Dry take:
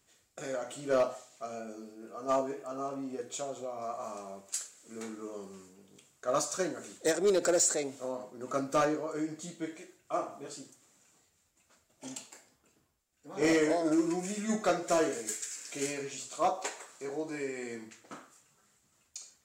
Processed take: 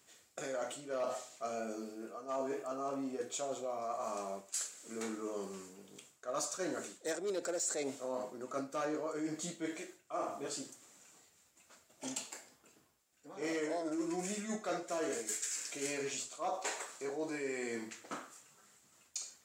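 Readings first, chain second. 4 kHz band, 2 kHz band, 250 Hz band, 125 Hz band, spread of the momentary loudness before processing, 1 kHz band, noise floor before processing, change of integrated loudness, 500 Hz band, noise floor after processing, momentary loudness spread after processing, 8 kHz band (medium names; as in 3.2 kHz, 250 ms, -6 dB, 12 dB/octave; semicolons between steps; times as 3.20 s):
-3.5 dB, -5.0 dB, -6.5 dB, -7.5 dB, 18 LU, -6.0 dB, -72 dBFS, -6.5 dB, -6.5 dB, -70 dBFS, 10 LU, -4.0 dB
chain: high-pass 220 Hz 6 dB/octave; reverse; compression 6:1, threshold -40 dBFS, peak gain reduction 15.5 dB; reverse; trim +4.5 dB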